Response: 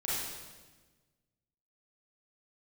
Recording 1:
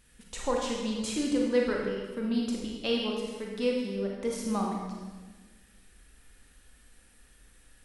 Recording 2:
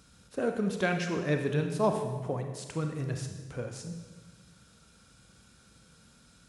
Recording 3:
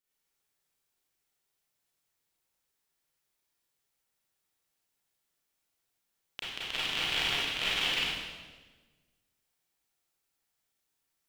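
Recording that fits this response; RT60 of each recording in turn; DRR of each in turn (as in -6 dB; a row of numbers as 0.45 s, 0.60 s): 3; 1.3 s, 1.3 s, 1.3 s; -1.5 dB, 4.5 dB, -9.0 dB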